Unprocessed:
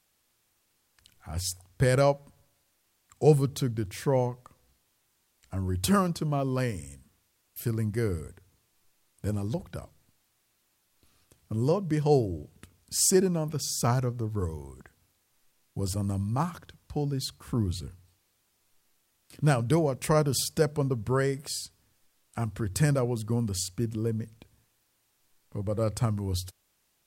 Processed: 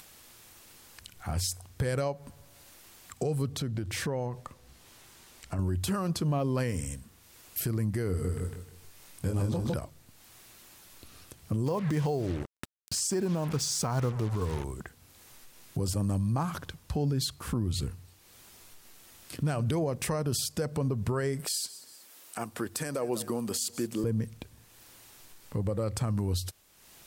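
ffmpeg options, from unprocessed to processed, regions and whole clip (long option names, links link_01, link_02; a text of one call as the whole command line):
ffmpeg -i in.wav -filter_complex "[0:a]asettb=1/sr,asplit=3[link_01][link_02][link_03];[link_01]atrim=end=3.524[link_04];[link_02]atrim=start=3.52:end=5.59,asetpts=PTS-STARTPTS,afade=type=in:duration=0.004:curve=qsin,afade=type=out:start_time=2.066:duration=0.004:curve=qsin,highshelf=frequency=11000:gain=-8,acompressor=threshold=-38dB:ratio=6:attack=3.2:release=140:knee=1:detection=peak[link_05];[link_03]atrim=start=5.586[link_06];[link_04][link_05]acrossfade=duration=0.004:curve1=hsin:curve2=qsin[link_07];[link_07][link_06]acrossfade=duration=0.004:curve1=qsin:curve2=hsin,asettb=1/sr,asplit=3[link_08][link_09][link_10];[link_08]atrim=end=8.094[link_11];[link_09]atrim=start=8.09:end=9.74,asetpts=PTS-STARTPTS,afade=type=in:duration=0.004:curve=qsin,afade=type=out:start_time=1.646:duration=0.004:curve=qsin,asplit=2[link_12][link_13];[link_13]adelay=22,volume=-4.5dB[link_14];[link_12][link_14]amix=inputs=2:normalize=0,atrim=end_sample=72765,aecho=1:1:156|312|468|624:0.631|0.17|0.046|0.0124,atrim=end_sample=72765[link_15];[link_10]atrim=start=9.736[link_16];[link_11][link_15]acrossfade=duration=0.004:curve1=hsin:curve2=qsin[link_17];[link_17][link_16]acrossfade=duration=0.004:curve1=qsin:curve2=hsin,asettb=1/sr,asplit=3[link_18][link_19][link_20];[link_18]atrim=end=11.664[link_21];[link_19]atrim=start=11.66:end=14.64,asetpts=PTS-STARTPTS,afade=type=in:duration=0.004:curve=qsin,afade=type=out:start_time=2.976:duration=0.004:curve=qsin,lowpass=10000,equalizer=frequency=970:width_type=o:width=0.77:gain=5,acrusher=bits=6:mix=0:aa=0.5[link_22];[link_20]atrim=start=14.636[link_23];[link_21][link_22]acrossfade=duration=0.004:curve1=hsin:curve2=qsin[link_24];[link_24][link_23]acrossfade=duration=0.004:curve1=qsin:curve2=hsin,asettb=1/sr,asplit=3[link_25][link_26][link_27];[link_25]atrim=end=21.454[link_28];[link_26]atrim=start=21.45:end=24.04,asetpts=PTS-STARTPTS,afade=type=in:duration=0.004:curve=qsin,afade=type=out:start_time=2.586:duration=0.004:curve=qsin,highpass=310,highshelf=frequency=10000:gain=7,aecho=1:1:187|374:0.075|0.027,atrim=end_sample=114219[link_29];[link_27]atrim=start=24.036[link_30];[link_28][link_29]acrossfade=duration=0.004:curve1=hsin:curve2=qsin[link_31];[link_31][link_30]acrossfade=duration=0.004:curve1=qsin:curve2=hsin,acompressor=threshold=-26dB:ratio=6,alimiter=level_in=6dB:limit=-24dB:level=0:latency=1:release=190,volume=-6dB,acompressor=mode=upward:threshold=-52dB:ratio=2.5,volume=8.5dB" out.wav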